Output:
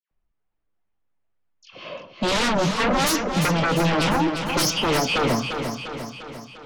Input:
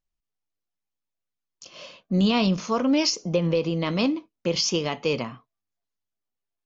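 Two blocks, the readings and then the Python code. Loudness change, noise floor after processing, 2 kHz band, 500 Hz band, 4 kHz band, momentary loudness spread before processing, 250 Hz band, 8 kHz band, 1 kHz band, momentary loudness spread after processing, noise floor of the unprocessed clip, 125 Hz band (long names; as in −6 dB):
+2.5 dB, −75 dBFS, +9.5 dB, +2.0 dB, +3.5 dB, 11 LU, 0.0 dB, can't be measured, +9.5 dB, 17 LU, −85 dBFS, +3.0 dB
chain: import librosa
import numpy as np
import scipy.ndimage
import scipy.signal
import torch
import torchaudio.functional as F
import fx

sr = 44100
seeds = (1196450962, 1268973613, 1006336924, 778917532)

y = fx.high_shelf(x, sr, hz=3600.0, db=-7.0)
y = fx.dispersion(y, sr, late='lows', ms=113.0, hz=1700.0)
y = fx.env_lowpass(y, sr, base_hz=2200.0, full_db=-21.5)
y = fx.fold_sine(y, sr, drive_db=15, ceiling_db=-10.0)
y = fx.echo_feedback(y, sr, ms=349, feedback_pct=57, wet_db=-7.0)
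y = y * 10.0 ** (-8.0 / 20.0)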